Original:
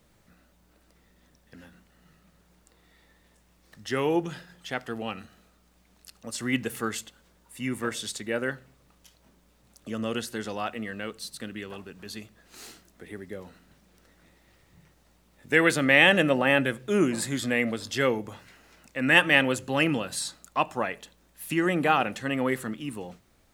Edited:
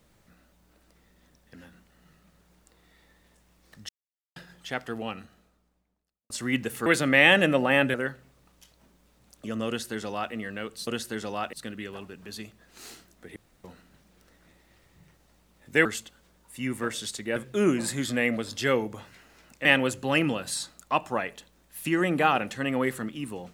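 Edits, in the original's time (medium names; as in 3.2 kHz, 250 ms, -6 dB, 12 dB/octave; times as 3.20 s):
3.89–4.36 s: mute
4.92–6.30 s: studio fade out
6.86–8.37 s: swap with 15.62–16.70 s
10.10–10.76 s: copy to 11.30 s
13.13–13.41 s: room tone
18.99–19.30 s: delete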